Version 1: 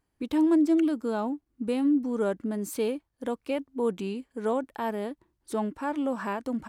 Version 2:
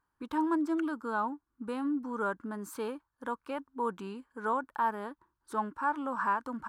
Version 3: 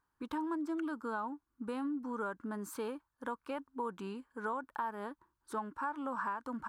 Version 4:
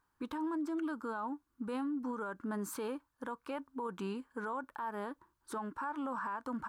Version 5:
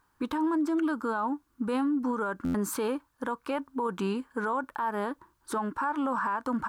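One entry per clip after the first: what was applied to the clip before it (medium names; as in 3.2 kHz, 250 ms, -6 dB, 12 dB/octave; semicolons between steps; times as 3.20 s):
high-order bell 1.2 kHz +14.5 dB 1.1 oct; trim -8.5 dB
compression, threshold -33 dBFS, peak gain reduction 8.5 dB; trim -1 dB
peak limiter -34.5 dBFS, peak gain reduction 10.5 dB; on a send at -20 dB: reverberation RT60 0.15 s, pre-delay 5 ms; on the sum: trim +3.5 dB
buffer glitch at 2.44 s, samples 512, times 8; trim +9 dB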